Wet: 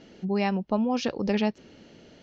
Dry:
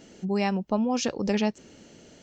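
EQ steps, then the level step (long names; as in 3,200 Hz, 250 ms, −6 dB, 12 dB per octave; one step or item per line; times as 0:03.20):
low-pass filter 4,900 Hz 24 dB per octave
0.0 dB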